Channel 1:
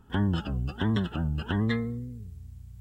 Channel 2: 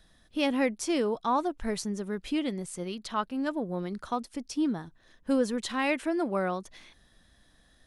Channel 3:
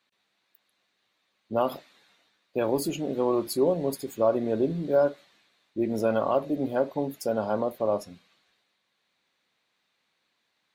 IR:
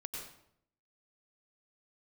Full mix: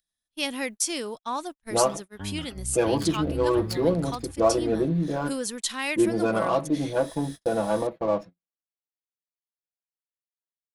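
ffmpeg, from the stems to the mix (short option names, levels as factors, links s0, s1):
-filter_complex "[0:a]asubboost=boost=8.5:cutoff=80,adelay=2050,volume=0.355[s0];[1:a]acompressor=mode=upward:threshold=0.0178:ratio=2.5,crystalizer=i=7:c=0,volume=0.473[s1];[2:a]aecho=1:1:6.1:0.94,adynamicequalizer=threshold=0.02:dfrequency=580:dqfactor=0.78:tfrequency=580:tqfactor=0.78:attack=5:release=100:ratio=0.375:range=3:mode=cutabove:tftype=bell,adynamicsmooth=sensitivity=7.5:basefreq=1300,adelay=200,volume=1.26[s2];[s0][s1][s2]amix=inputs=3:normalize=0,agate=range=0.00891:threshold=0.0178:ratio=16:detection=peak"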